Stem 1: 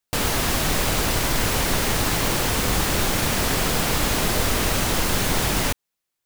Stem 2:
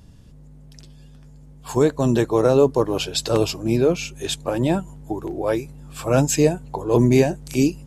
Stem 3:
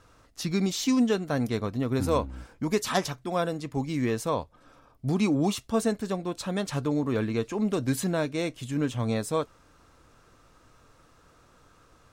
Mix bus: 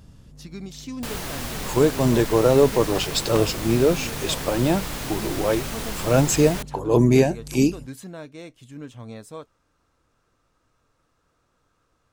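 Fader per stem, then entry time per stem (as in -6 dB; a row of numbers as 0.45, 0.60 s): -9.5, -0.5, -10.5 dB; 0.90, 0.00, 0.00 s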